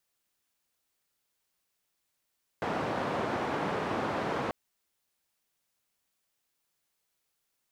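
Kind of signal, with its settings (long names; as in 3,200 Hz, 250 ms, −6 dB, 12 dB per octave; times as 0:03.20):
band-limited noise 130–950 Hz, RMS −32 dBFS 1.89 s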